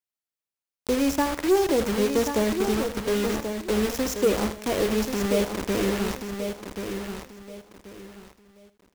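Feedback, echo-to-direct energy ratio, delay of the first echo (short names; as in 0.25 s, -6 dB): no steady repeat, -5.5 dB, 79 ms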